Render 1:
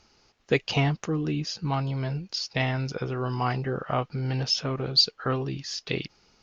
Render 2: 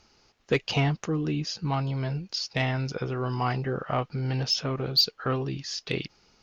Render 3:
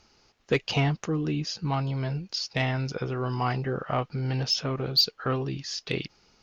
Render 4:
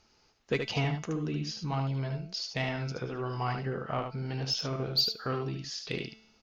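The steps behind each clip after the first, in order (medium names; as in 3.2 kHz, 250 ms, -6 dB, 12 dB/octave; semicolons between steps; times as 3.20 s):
saturation -12 dBFS, distortion -22 dB
no audible change
feedback comb 220 Hz, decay 0.79 s, mix 60%; delay 74 ms -6 dB; trim +2 dB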